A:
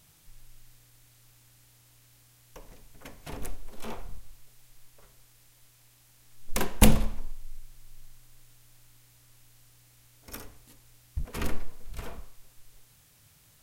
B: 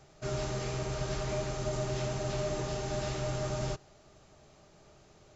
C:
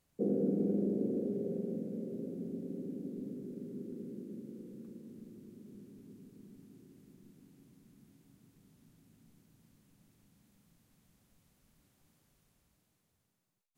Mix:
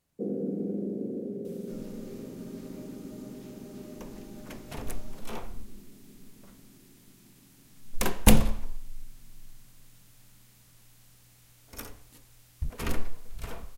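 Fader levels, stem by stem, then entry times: +0.5, -18.5, -0.5 dB; 1.45, 1.45, 0.00 s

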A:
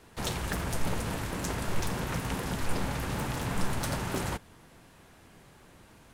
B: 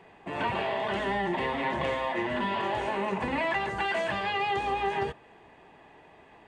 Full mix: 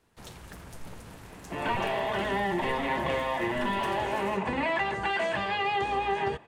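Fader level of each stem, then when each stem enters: -13.0, +0.5 dB; 0.00, 1.25 s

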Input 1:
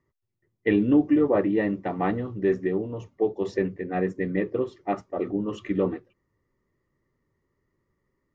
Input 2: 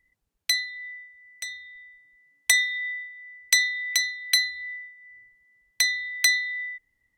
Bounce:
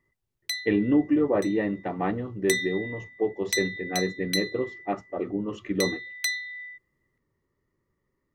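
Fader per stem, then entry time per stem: -2.0, -7.5 dB; 0.00, 0.00 s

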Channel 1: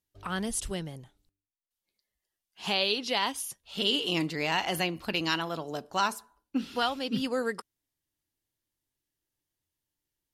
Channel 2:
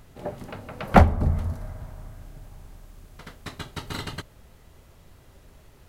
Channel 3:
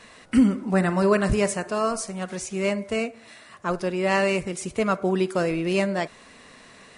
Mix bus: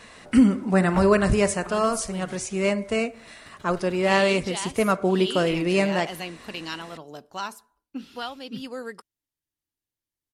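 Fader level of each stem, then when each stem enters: -5.0, -16.0, +1.5 dB; 1.40, 0.00, 0.00 s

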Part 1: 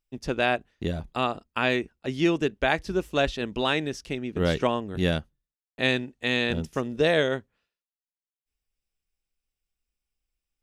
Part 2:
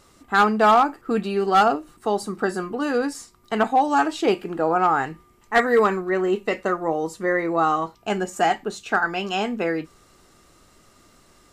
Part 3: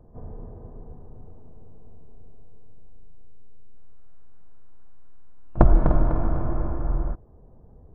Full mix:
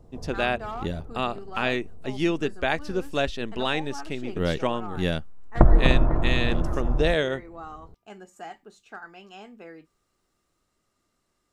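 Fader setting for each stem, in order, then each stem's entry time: -1.5, -20.0, 0.0 dB; 0.00, 0.00, 0.00 s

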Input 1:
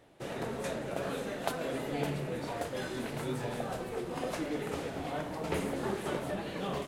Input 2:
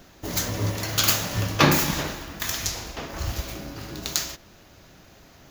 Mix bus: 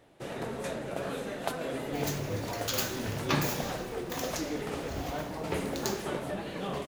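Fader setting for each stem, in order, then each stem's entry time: +0.5, -11.5 dB; 0.00, 1.70 s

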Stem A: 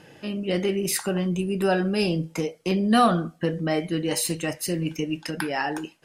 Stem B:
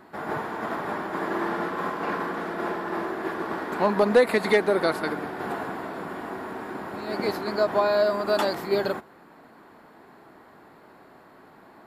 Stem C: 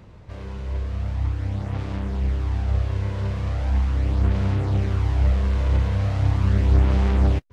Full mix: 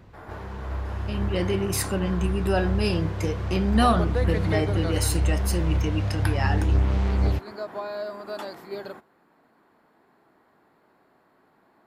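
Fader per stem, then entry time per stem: -2.0, -11.0, -4.0 dB; 0.85, 0.00, 0.00 s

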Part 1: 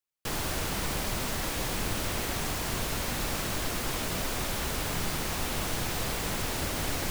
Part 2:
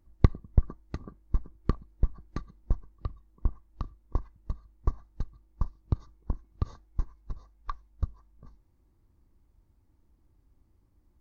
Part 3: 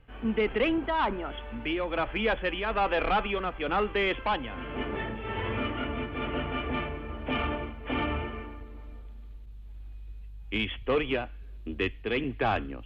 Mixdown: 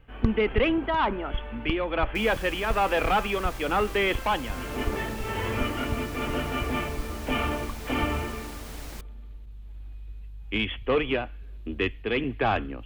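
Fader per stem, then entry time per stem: -11.0, -5.0, +2.5 dB; 1.90, 0.00, 0.00 s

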